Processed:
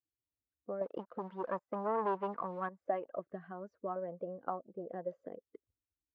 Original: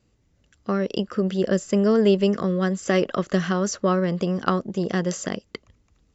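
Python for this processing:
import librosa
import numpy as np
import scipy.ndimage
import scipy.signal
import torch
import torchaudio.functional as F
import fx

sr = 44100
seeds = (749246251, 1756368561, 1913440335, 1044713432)

y = fx.bin_expand(x, sr, power=1.5)
y = scipy.signal.sosfilt(scipy.signal.butter(2, 1800.0, 'lowpass', fs=sr, output='sos'), y)
y = fx.leveller(y, sr, passes=2, at=(0.81, 2.69))
y = fx.peak_eq(y, sr, hz=540.0, db=-13.0, octaves=0.6, at=(3.19, 3.96))
y = fx.auto_wah(y, sr, base_hz=370.0, top_hz=1000.0, q=3.9, full_db=-17.5, direction='up')
y = F.gain(torch.from_numpy(y), -2.0).numpy()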